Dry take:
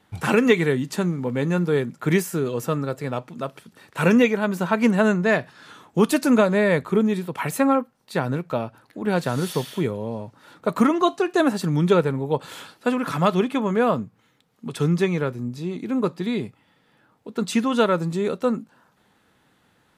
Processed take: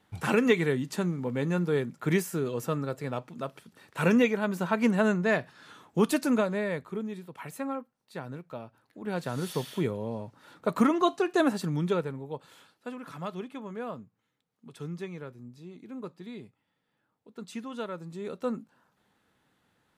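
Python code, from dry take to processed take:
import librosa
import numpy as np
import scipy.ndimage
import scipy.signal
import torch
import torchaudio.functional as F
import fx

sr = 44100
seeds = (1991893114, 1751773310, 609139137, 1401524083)

y = fx.gain(x, sr, db=fx.line((6.13, -6.0), (6.97, -15.0), (8.61, -15.0), (9.76, -5.0), (11.45, -5.0), (12.56, -17.0), (18.04, -17.0), (18.48, -9.0)))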